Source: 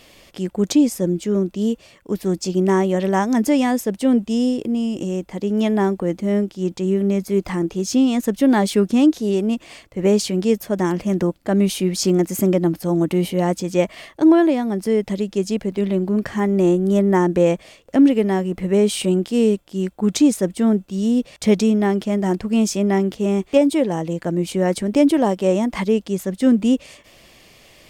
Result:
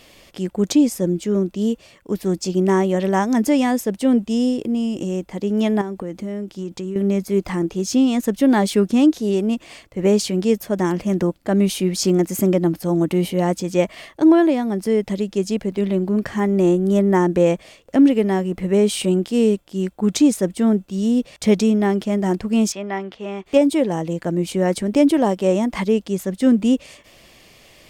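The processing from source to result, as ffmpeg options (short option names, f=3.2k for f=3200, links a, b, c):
-filter_complex "[0:a]asettb=1/sr,asplit=3[a][b][c];[a]atrim=end=5.814[d];[b]atrim=start=5.81:end=6.96,asetpts=PTS-STARTPTS,afade=t=in:d=0.004:c=qsin,afade=t=out:st=1.146:d=0.004:c=qsin,acompressor=threshold=-24dB:ratio=6:attack=3.2:release=140:knee=1:detection=peak[e];[c]atrim=start=6.956[f];[d][e]acrossfade=d=0.004:c1=hsin:c2=qsin[g];[g][f]acrossfade=d=0.004:c1=qsin:c2=hsin,asettb=1/sr,asplit=3[h][i][j];[h]atrim=end=22.724[k];[i]atrim=start=22.72:end=23.46,asetpts=PTS-STARTPTS,afade=t=in:d=0.004:c=qsin,afade=t=out:st=0.736:d=0.004:c=qsin,acrossover=split=590 4100:gain=0.224 1 0.0891[l][m][n];[l][m][n]amix=inputs=3:normalize=0[o];[j]atrim=start=23.456[p];[k][o]acrossfade=d=0.004:c1=hsin:c2=qsin[q];[q][p]acrossfade=d=0.004:c1=qsin:c2=hsin"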